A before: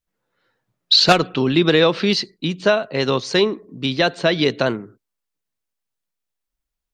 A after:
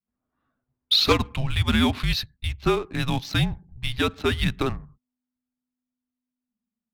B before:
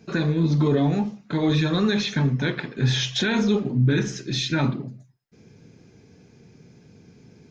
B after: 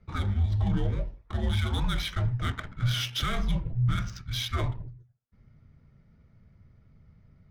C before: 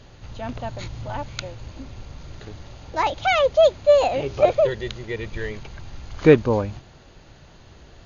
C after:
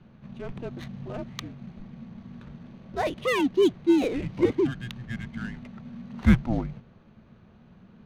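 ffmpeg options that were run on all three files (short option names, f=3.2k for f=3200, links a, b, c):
-af "afreqshift=-250,adynamicsmooth=sensitivity=7.5:basefreq=1.8k,volume=-5.5dB"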